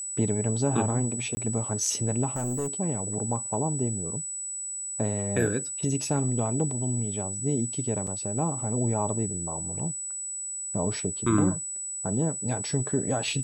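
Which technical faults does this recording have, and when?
whistle 7,900 Hz −32 dBFS
0:01.35–0:01.37: drop-out 20 ms
0:02.35–0:02.68: clipping −25.5 dBFS
0:08.07: drop-out 4.7 ms

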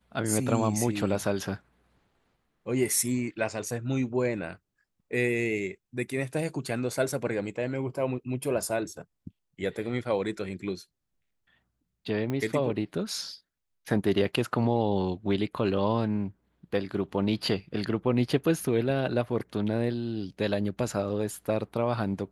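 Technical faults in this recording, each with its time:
0:12.30: click −19 dBFS

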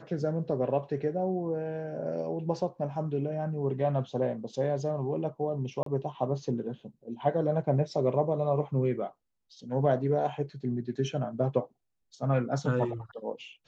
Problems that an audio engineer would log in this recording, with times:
0:05.83–0:05.86: drop-out 33 ms

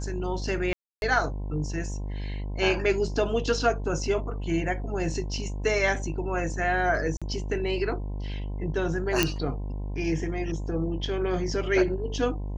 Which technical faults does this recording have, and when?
mains buzz 50 Hz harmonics 21 −32 dBFS
0:00.73–0:01.02: drop-out 291 ms
0:07.17–0:07.22: drop-out 46 ms
0:09.23: click −6 dBFS

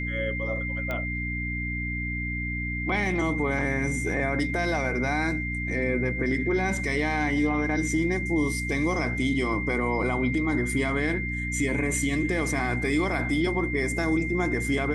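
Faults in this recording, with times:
mains hum 60 Hz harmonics 5 −32 dBFS
whistle 2,100 Hz −31 dBFS
0:00.91: click −18 dBFS

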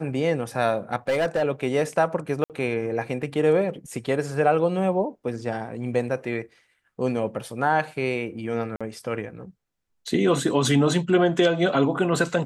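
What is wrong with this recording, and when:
0:01.08–0:01.43: clipping −18.5 dBFS
0:02.44–0:02.50: drop-out 58 ms
0:08.76–0:08.81: drop-out 46 ms

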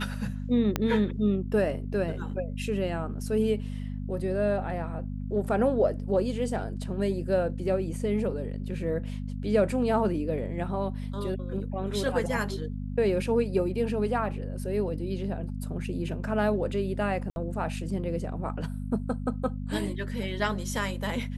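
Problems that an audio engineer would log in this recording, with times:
mains hum 50 Hz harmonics 5 −34 dBFS
0:00.76: click −11 dBFS
0:17.30–0:17.36: drop-out 61 ms

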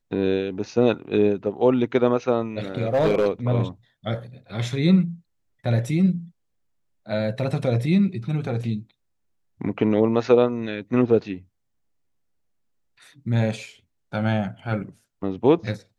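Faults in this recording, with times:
0:02.78–0:03.26: clipping −15 dBFS

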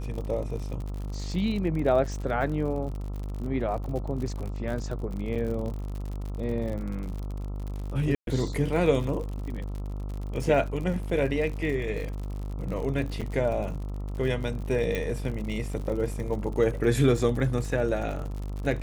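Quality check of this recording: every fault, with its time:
mains buzz 50 Hz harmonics 27 −33 dBFS
surface crackle 60 per second −34 dBFS
0:05.35–0:05.36: drop-out 6.8 ms
0:08.15–0:08.27: drop-out 122 ms
0:13.21–0:13.22: drop-out 6.3 ms
0:14.95: click

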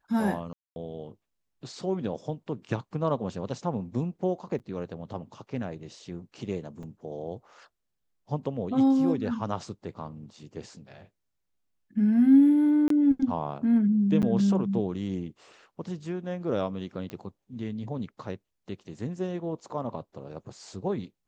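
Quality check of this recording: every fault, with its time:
0:00.53–0:00.76: drop-out 231 ms
0:04.59–0:04.60: drop-out 8.5 ms
0:06.83: drop-out 3.8 ms
0:12.88–0:12.90: drop-out 23 ms
0:14.22–0:14.23: drop-out 8.2 ms
0:17.10: click −24 dBFS

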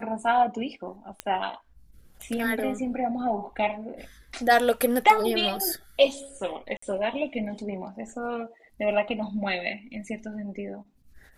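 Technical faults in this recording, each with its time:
0:01.20: click −15 dBFS
0:06.77–0:06.82: drop-out 54 ms

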